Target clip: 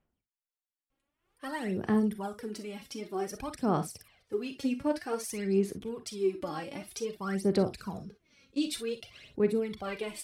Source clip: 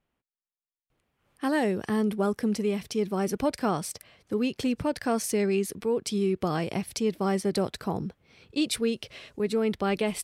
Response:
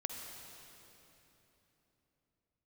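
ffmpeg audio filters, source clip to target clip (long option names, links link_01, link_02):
-filter_complex "[0:a]asettb=1/sr,asplit=3[link_01][link_02][link_03];[link_01]atrim=end=7.794[link_04];[link_02]atrim=start=7.79:end=8.68,asetpts=PTS-STARTPTS,afade=type=in:duration=0.004:curve=qsin,afade=type=out:start_time=0.886:duration=0.004:curve=qsin,equalizer=frequency=200:width_type=o:width=0.33:gain=7,equalizer=frequency=800:width_type=o:width=0.33:gain=-11,equalizer=frequency=6300:width_type=o:width=0.33:gain=9,equalizer=frequency=10000:width_type=o:width=0.33:gain=3[link_05];[link_03]atrim=start=8.676[link_06];[link_04][link_05]acrossfade=duration=0.004:curve1=hsin:curve2=qsin[link_07];[link_07][link_06]acrossfade=duration=0.004:curve1=qsin:curve2=hsin,aphaser=in_gain=1:out_gain=1:delay=3.7:decay=0.74:speed=0.53:type=sinusoidal[link_08];[1:a]atrim=start_sample=2205,atrim=end_sample=4410,asetrate=66150,aresample=44100[link_09];[link_08][link_09]afir=irnorm=-1:irlink=0,volume=-5dB"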